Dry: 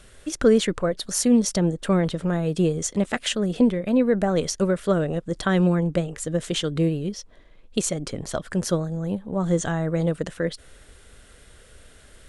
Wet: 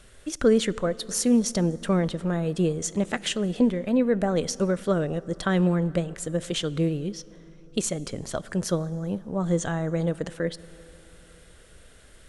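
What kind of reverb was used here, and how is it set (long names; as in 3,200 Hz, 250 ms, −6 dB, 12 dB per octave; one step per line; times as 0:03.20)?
dense smooth reverb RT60 4 s, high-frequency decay 0.5×, DRR 19 dB
level −2.5 dB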